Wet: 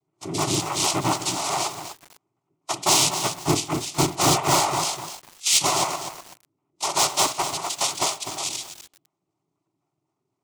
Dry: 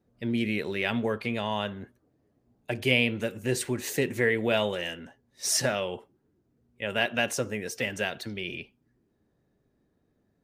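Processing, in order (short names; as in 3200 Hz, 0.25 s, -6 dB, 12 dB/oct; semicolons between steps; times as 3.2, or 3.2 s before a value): trilling pitch shifter +11 st, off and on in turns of 0.124 s; spectral noise reduction 14 dB; noise vocoder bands 3; in parallel at -10 dB: wrapped overs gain 20 dB; on the sum: fixed phaser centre 330 Hz, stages 8; on a send at -15 dB: reverb, pre-delay 51 ms; on the sum: lo-fi delay 0.249 s, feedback 35%, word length 7-bit, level -9 dB; gain +8.5 dB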